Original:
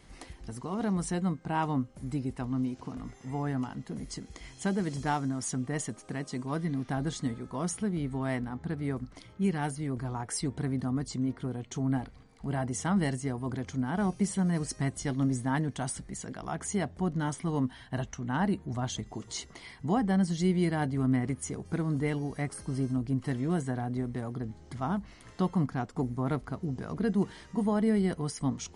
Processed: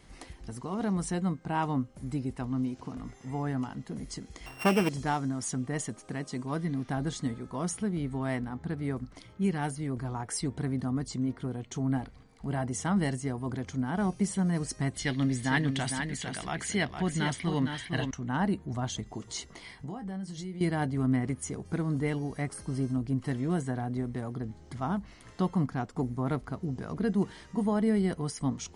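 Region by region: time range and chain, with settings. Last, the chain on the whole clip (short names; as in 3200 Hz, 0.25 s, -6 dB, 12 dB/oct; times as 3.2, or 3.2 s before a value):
4.46–4.89 sample sorter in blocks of 16 samples + bell 900 Hz +12 dB 2.8 oct
14.94–18.11 band shelf 2800 Hz +10.5 dB + echo 0.458 s -6.5 dB
19.47–20.61 compressor 16:1, threshold -35 dBFS + doubler 21 ms -9 dB
whole clip: dry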